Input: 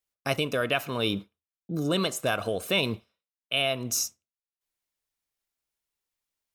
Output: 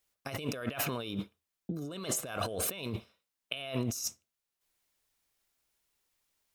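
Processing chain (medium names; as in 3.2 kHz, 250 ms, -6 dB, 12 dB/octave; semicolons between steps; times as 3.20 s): compressor with a negative ratio -37 dBFS, ratio -1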